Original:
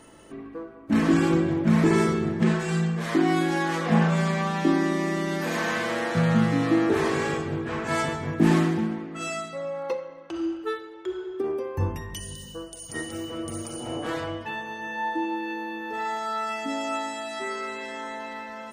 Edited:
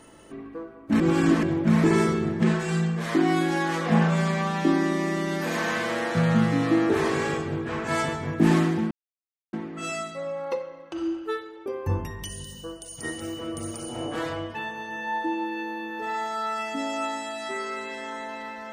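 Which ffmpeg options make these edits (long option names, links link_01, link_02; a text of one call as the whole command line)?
ffmpeg -i in.wav -filter_complex "[0:a]asplit=5[link_01][link_02][link_03][link_04][link_05];[link_01]atrim=end=1.002[link_06];[link_02]atrim=start=0.998:end=1.432,asetpts=PTS-STARTPTS,areverse[link_07];[link_03]atrim=start=1.428:end=8.91,asetpts=PTS-STARTPTS,afade=type=out:start_time=7.478:duration=0.004:curve=hsin,apad=pad_dur=0.62[link_08];[link_04]atrim=start=8.91:end=11.042,asetpts=PTS-STARTPTS,afade=type=in:duration=0.004:curve=hsin[link_09];[link_05]atrim=start=11.568[link_10];[link_06][link_07]acrossfade=duration=0.004:curve1=hsin:curve2=hsin[link_11];[link_08][link_09]concat=n=2:v=0:a=1[link_12];[link_11][link_12]acrossfade=duration=0.004:curve1=hsin:curve2=hsin[link_13];[link_13][link_10]acrossfade=duration=0.004:curve1=hsin:curve2=hsin" out.wav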